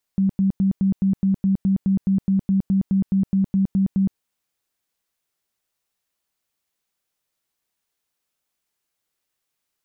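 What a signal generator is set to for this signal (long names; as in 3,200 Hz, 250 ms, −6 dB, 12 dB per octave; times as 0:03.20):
tone bursts 193 Hz, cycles 22, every 0.21 s, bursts 19, −15 dBFS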